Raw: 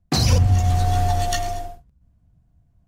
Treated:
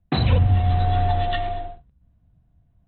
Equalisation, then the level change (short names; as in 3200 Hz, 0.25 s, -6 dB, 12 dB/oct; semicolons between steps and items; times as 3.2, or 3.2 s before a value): Chebyshev low-pass 4000 Hz, order 10; 0.0 dB